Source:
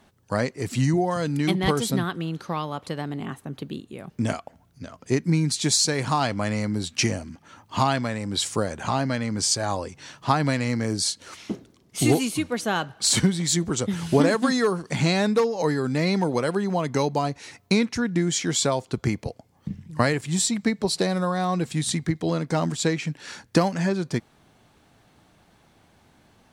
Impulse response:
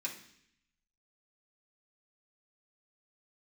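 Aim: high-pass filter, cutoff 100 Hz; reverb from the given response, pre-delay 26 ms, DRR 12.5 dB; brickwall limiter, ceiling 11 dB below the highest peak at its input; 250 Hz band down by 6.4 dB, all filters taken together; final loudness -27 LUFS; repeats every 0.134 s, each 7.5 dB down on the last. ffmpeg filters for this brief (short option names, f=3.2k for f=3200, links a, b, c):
-filter_complex "[0:a]highpass=100,equalizer=f=250:t=o:g=-9,alimiter=limit=-18dB:level=0:latency=1,aecho=1:1:134|268|402|536|670:0.422|0.177|0.0744|0.0312|0.0131,asplit=2[a][b];[1:a]atrim=start_sample=2205,adelay=26[c];[b][c]afir=irnorm=-1:irlink=0,volume=-13.5dB[d];[a][d]amix=inputs=2:normalize=0,volume=2dB"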